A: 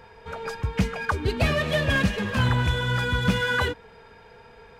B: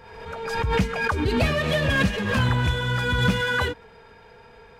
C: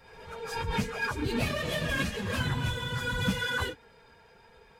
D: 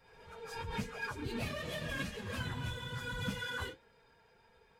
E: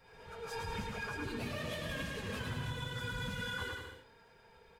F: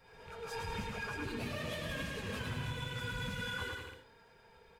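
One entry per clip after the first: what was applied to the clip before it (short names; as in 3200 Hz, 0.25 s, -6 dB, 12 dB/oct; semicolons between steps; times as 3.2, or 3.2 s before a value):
backwards sustainer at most 47 dB/s
phase scrambler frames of 50 ms; high shelf 5000 Hz +9.5 dB; gain -8.5 dB
flange 0.96 Hz, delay 6.1 ms, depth 5.7 ms, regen -71%; gain -4.5 dB
compressor, threshold -40 dBFS, peak gain reduction 8.5 dB; on a send: bouncing-ball echo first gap 0.11 s, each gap 0.75×, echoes 5; on the sum: gain +2 dB
rattling part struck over -50 dBFS, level -41 dBFS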